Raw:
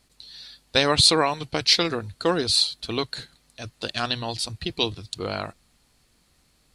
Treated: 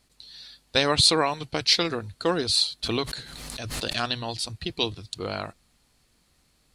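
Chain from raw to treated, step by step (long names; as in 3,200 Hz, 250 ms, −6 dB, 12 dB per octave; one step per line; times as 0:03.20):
0:02.83–0:04.05: background raised ahead of every attack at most 25 dB per second
level −2 dB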